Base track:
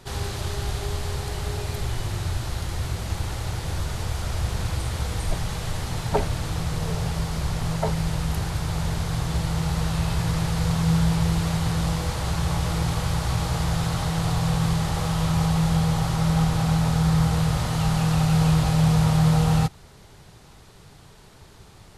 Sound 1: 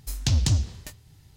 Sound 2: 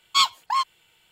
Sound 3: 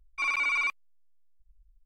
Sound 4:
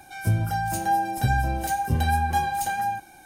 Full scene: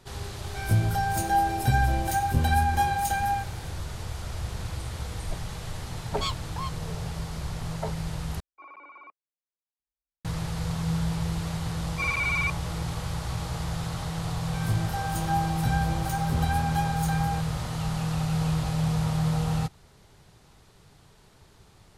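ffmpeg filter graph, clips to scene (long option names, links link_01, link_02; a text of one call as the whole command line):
ffmpeg -i bed.wav -i cue0.wav -i cue1.wav -i cue2.wav -i cue3.wav -filter_complex "[4:a]asplit=2[link_01][link_02];[3:a]asplit=2[link_03][link_04];[0:a]volume=-7dB[link_05];[2:a]aeval=exprs='sgn(val(0))*max(abs(val(0))-0.00266,0)':channel_layout=same[link_06];[link_03]asuperpass=centerf=470:order=4:qfactor=0.77[link_07];[link_05]asplit=2[link_08][link_09];[link_08]atrim=end=8.404[link_10];[link_07]atrim=end=1.85,asetpts=PTS-STARTPTS,volume=-3.5dB[link_11];[link_09]atrim=start=10.246[link_12];[link_01]atrim=end=3.25,asetpts=PTS-STARTPTS,volume=-0.5dB,afade=type=in:duration=0.004:curve=hsin,afade=type=out:start_time=3.246:duration=0.004:curve=hsin,adelay=440[link_13];[link_06]atrim=end=1.11,asetpts=PTS-STARTPTS,volume=-13dB,afade=type=in:duration=0.004:curve=hsin,afade=type=out:start_time=1.106:duration=0.004:curve=hsin,adelay=6060[link_14];[link_04]atrim=end=1.85,asetpts=PTS-STARTPTS,afade=type=in:duration=0.004:curve=hsin,afade=type=out:start_time=1.846:duration=0.004:curve=hsin,adelay=11800[link_15];[link_02]atrim=end=3.25,asetpts=PTS-STARTPTS,volume=-5.5dB,afade=type=in:duration=0.004:curve=hsin,afade=type=out:start_time=3.246:duration=0.004:curve=hsin,adelay=14420[link_16];[link_10][link_11]acrossfade=duration=0.004:curve1=hsin:curve2=hsin[link_17];[link_17][link_12]acrossfade=duration=0.004:curve1=hsin:curve2=hsin[link_18];[link_18][link_13][link_14][link_15][link_16]amix=inputs=5:normalize=0" out.wav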